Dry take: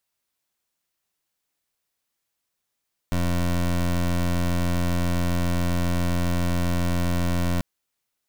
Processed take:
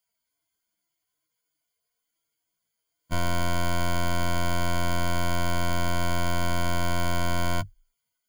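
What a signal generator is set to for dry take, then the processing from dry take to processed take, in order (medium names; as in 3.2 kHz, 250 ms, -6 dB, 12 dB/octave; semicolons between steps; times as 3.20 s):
pulse 87.4 Hz, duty 21% -22.5 dBFS 4.49 s
harmonic-percussive separation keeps harmonic; rippled EQ curve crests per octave 1.8, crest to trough 13 dB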